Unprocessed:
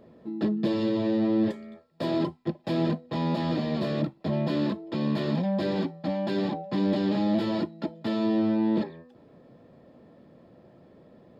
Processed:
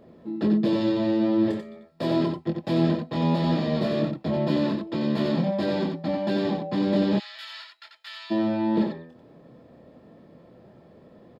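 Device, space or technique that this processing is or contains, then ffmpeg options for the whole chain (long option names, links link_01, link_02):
slapback doubling: -filter_complex "[0:a]asplit=3[link_01][link_02][link_03];[link_02]adelay=24,volume=-6.5dB[link_04];[link_03]adelay=90,volume=-5dB[link_05];[link_01][link_04][link_05]amix=inputs=3:normalize=0,asplit=3[link_06][link_07][link_08];[link_06]afade=type=out:start_time=7.18:duration=0.02[link_09];[link_07]highpass=frequency=1500:width=0.5412,highpass=frequency=1500:width=1.3066,afade=type=in:start_time=7.18:duration=0.02,afade=type=out:start_time=8.3:duration=0.02[link_10];[link_08]afade=type=in:start_time=8.3:duration=0.02[link_11];[link_09][link_10][link_11]amix=inputs=3:normalize=0,volume=1dB"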